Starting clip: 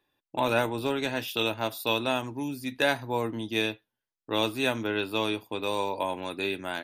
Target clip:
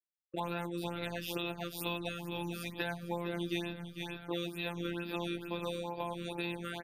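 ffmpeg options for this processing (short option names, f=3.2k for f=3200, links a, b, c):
-filter_complex "[0:a]asplit=2[a][b];[b]asplit=4[c][d][e][f];[c]adelay=448,afreqshift=-45,volume=-12dB[g];[d]adelay=896,afreqshift=-90,volume=-20dB[h];[e]adelay=1344,afreqshift=-135,volume=-27.9dB[i];[f]adelay=1792,afreqshift=-180,volume=-35.9dB[j];[g][h][i][j]amix=inputs=4:normalize=0[k];[a][k]amix=inputs=2:normalize=0,acrossover=split=170[l][m];[m]acompressor=threshold=-36dB:ratio=6[n];[l][n]amix=inputs=2:normalize=0,highpass=40,afftfilt=real='hypot(re,im)*cos(PI*b)':imag='0':win_size=1024:overlap=0.75,agate=range=-38dB:threshold=-60dB:ratio=16:detection=peak,afftfilt=real='re*(1-between(b*sr/1024,750*pow(7900/750,0.5+0.5*sin(2*PI*2.2*pts/sr))/1.41,750*pow(7900/750,0.5+0.5*sin(2*PI*2.2*pts/sr))*1.41))':imag='im*(1-between(b*sr/1024,750*pow(7900/750,0.5+0.5*sin(2*PI*2.2*pts/sr))/1.41,750*pow(7900/750,0.5+0.5*sin(2*PI*2.2*pts/sr))*1.41))':win_size=1024:overlap=0.75,volume=4.5dB"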